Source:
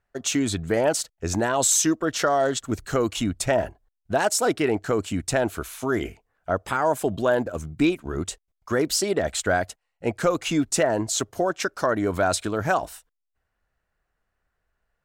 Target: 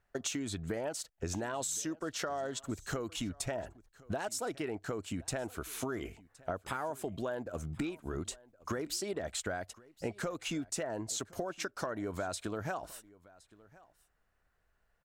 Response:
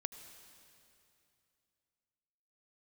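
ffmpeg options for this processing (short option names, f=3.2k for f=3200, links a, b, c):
-filter_complex "[0:a]acompressor=threshold=-34dB:ratio=10,asplit=2[a][b];[b]aecho=0:1:1067:0.075[c];[a][c]amix=inputs=2:normalize=0"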